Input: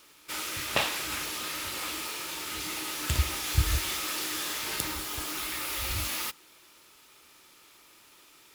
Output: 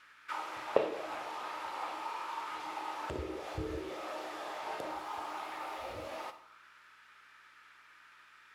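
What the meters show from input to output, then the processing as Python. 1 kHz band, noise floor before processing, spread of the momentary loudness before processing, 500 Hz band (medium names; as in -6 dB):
+0.5 dB, -57 dBFS, 6 LU, +4.5 dB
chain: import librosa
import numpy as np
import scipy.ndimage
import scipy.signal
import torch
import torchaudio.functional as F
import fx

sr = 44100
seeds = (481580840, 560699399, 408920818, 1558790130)

y = fx.add_hum(x, sr, base_hz=60, snr_db=25)
y = fx.auto_wah(y, sr, base_hz=420.0, top_hz=1700.0, q=4.0, full_db=-25.5, direction='down')
y = fx.rev_schroeder(y, sr, rt60_s=0.57, comb_ms=28, drr_db=10.0)
y = y * librosa.db_to_amplitude(9.0)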